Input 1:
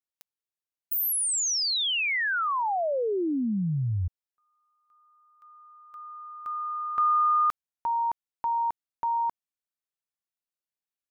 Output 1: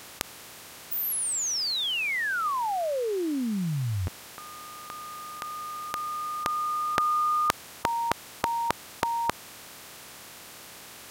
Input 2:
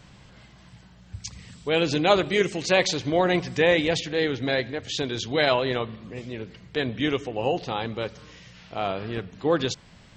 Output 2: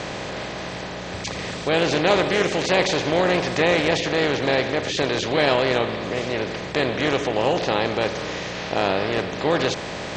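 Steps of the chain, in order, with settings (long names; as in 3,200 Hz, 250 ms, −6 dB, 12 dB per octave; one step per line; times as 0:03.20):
compressor on every frequency bin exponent 0.4
highs frequency-modulated by the lows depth 0.15 ms
level −3 dB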